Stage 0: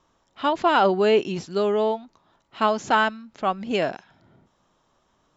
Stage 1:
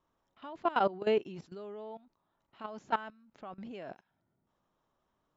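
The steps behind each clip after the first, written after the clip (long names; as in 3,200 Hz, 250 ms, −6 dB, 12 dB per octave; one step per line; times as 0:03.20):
high-shelf EQ 4,300 Hz −11.5 dB
output level in coarse steps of 18 dB
level −7.5 dB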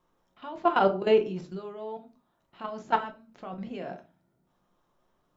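rectangular room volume 170 cubic metres, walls furnished, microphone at 0.89 metres
level +4.5 dB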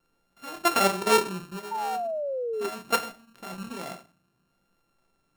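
samples sorted by size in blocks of 32 samples
pitch vibrato 0.72 Hz 11 cents
sound drawn into the spectrogram fall, 0:01.71–0:02.69, 390–920 Hz −30 dBFS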